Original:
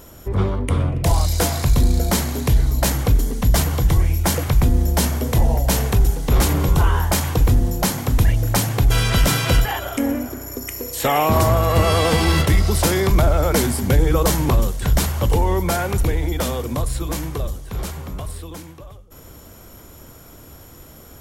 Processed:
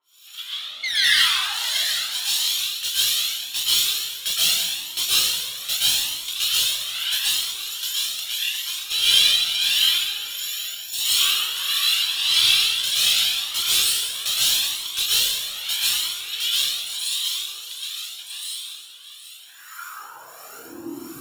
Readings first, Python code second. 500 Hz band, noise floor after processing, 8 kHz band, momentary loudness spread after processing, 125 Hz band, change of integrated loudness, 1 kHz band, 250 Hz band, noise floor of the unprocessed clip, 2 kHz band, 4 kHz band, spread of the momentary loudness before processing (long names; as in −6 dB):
below −25 dB, −43 dBFS, +3.5 dB, 15 LU, below −35 dB, −0.5 dB, −14.0 dB, below −20 dB, −43 dBFS, +1.5 dB, +12.0 dB, 10 LU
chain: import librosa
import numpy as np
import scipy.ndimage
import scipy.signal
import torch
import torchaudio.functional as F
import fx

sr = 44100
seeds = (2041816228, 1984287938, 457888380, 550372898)

y = fx.lower_of_two(x, sr, delay_ms=0.72)
y = fx.highpass(y, sr, hz=55.0, slope=6)
y = fx.spec_paint(y, sr, seeds[0], shape='fall', start_s=0.83, length_s=0.89, low_hz=440.0, high_hz=2200.0, level_db=-15.0)
y = 10.0 ** (-14.0 / 20.0) * np.tanh(y / 10.0 ** (-14.0 / 20.0))
y = fx.harmonic_tremolo(y, sr, hz=1.5, depth_pct=100, crossover_hz=1000.0)
y = fx.filter_sweep_highpass(y, sr, from_hz=3400.0, to_hz=150.0, start_s=19.09, end_s=21.2, q=7.5)
y = np.clip(y, -10.0 ** (-20.0 / 20.0), 10.0 ** (-20.0 / 20.0))
y = y + 10.0 ** (-12.5 / 20.0) * np.pad(y, (int(769 * sr / 1000.0), 0))[:len(y)]
y = fx.rev_plate(y, sr, seeds[1], rt60_s=1.5, hf_ratio=0.85, predelay_ms=105, drr_db=-9.0)
y = fx.comb_cascade(y, sr, direction='rising', hz=0.81)
y = F.gain(torch.from_numpy(y), 4.0).numpy()